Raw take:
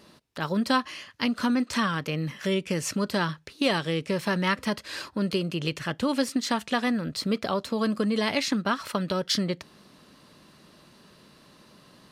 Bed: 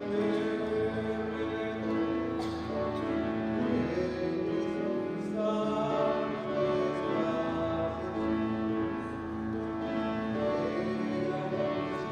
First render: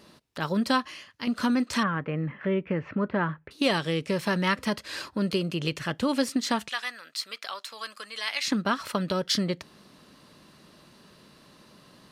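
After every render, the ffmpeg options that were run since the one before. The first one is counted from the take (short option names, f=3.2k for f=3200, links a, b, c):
-filter_complex "[0:a]asettb=1/sr,asplit=3[a][b][c];[a]atrim=end=1.834[d];[b]atrim=start=1.83:end=3.51,asetpts=PTS-STARTPTS,afade=t=in:d=0.004:c=qsin,afade=t=out:st=1.676:d=0.004:c=qsin,lowpass=f=2.1k:w=0.5412,lowpass=f=2.1k:w=1.3066[e];[c]atrim=start=3.506[f];[d][e]acrossfade=d=0.004:c1=hsin:c2=qsin[g];[g][f]acrossfade=d=0.004:c1=qsin:c2=hsin,asettb=1/sr,asplit=3[h][i][j];[h]atrim=end=6.694[k];[i]atrim=start=6.69:end=8.45,asetpts=PTS-STARTPTS,afade=t=in:d=0.004:c=qsin,afade=t=out:st=1.756:d=0.004:c=qsin,highpass=1.4k[l];[j]atrim=start=8.446[m];[k][l]acrossfade=d=0.004:c1=hsin:c2=qsin[n];[n][m]acrossfade=d=0.004:c1=qsin:c2=hsin,asplit=2[o][p];[o]atrim=end=1.27,asetpts=PTS-STARTPTS,afade=t=out:st=0.66:d=0.61:silence=0.398107[q];[p]atrim=start=1.27,asetpts=PTS-STARTPTS,afade=t=in:d=0.004:c=hsin:silence=0.398107[r];[q][r]concat=n=2:v=0:a=1"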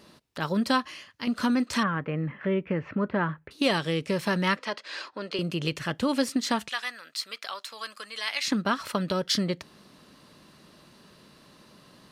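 -filter_complex "[0:a]asettb=1/sr,asplit=3[a][b][c];[a]atrim=end=4.574[d];[b]atrim=start=4.57:end=5.39,asetpts=PTS-STARTPTS,afade=t=in:d=0.004:c=qsin,afade=t=out:st=0.816:d=0.004:c=qsin,highpass=470,lowpass=5k[e];[c]atrim=start=5.386[f];[d][e]acrossfade=d=0.004:c1=hsin:c2=qsin[g];[g][f]acrossfade=d=0.004:c1=qsin:c2=hsin"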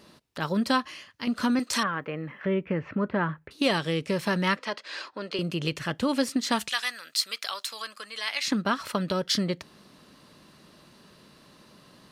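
-filter_complex "[0:a]asettb=1/sr,asplit=3[a][b][c];[a]atrim=end=1.594[d];[b]atrim=start=1.59:end=2.46,asetpts=PTS-STARTPTS,afade=t=in:d=0.004:c=qsin,afade=t=out:st=0.866:d=0.004:c=qsin,bass=f=250:g=-9,treble=f=4k:g=8[e];[c]atrim=start=2.456[f];[d][e]acrossfade=d=0.004:c1=hsin:c2=qsin[g];[g][f]acrossfade=d=0.004:c1=qsin:c2=hsin,asettb=1/sr,asplit=3[h][i][j];[h]atrim=end=6.524[k];[i]atrim=start=6.52:end=7.82,asetpts=PTS-STARTPTS,afade=t=in:d=0.004:c=qsin,afade=t=out:st=1.296:d=0.004:c=qsin,highshelf=f=3.1k:g=9.5[l];[j]atrim=start=7.816[m];[k][l]acrossfade=d=0.004:c1=hsin:c2=qsin[n];[n][m]acrossfade=d=0.004:c1=qsin:c2=hsin"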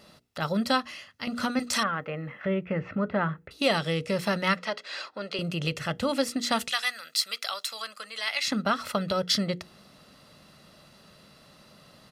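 -af "bandreject=f=60:t=h:w=6,bandreject=f=120:t=h:w=6,bandreject=f=180:t=h:w=6,bandreject=f=240:t=h:w=6,bandreject=f=300:t=h:w=6,bandreject=f=360:t=h:w=6,bandreject=f=420:t=h:w=6,bandreject=f=480:t=h:w=6,aecho=1:1:1.5:0.43"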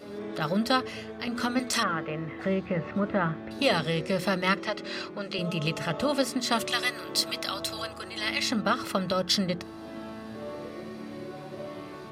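-filter_complex "[1:a]volume=-8dB[a];[0:a][a]amix=inputs=2:normalize=0"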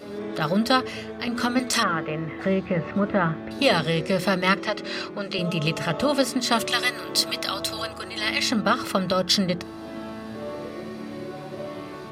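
-af "volume=4.5dB"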